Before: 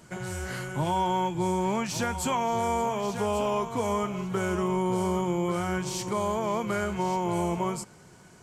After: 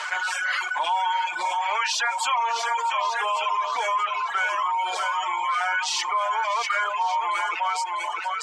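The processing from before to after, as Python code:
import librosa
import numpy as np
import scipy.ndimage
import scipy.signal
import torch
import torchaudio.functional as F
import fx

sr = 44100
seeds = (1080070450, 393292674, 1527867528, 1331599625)

y = scipy.signal.sosfilt(scipy.signal.butter(4, 940.0, 'highpass', fs=sr, output='sos'), x)
y = y + 0.46 * np.pad(y, (int(6.7 * sr / 1000.0), 0))[:len(y)]
y = fx.echo_multitap(y, sr, ms=(41, 268, 462), db=(-16.0, -16.5, -16.0))
y = fx.dereverb_blind(y, sr, rt60_s=1.3)
y = scipy.signal.sosfilt(scipy.signal.butter(2, 3500.0, 'lowpass', fs=sr, output='sos'), y)
y = fx.dereverb_blind(y, sr, rt60_s=1.7)
y = y + 10.0 ** (-9.5 / 20.0) * np.pad(y, (int(648 * sr / 1000.0), 0))[:len(y)]
y = fx.env_flatten(y, sr, amount_pct=70)
y = y * 10.0 ** (6.0 / 20.0)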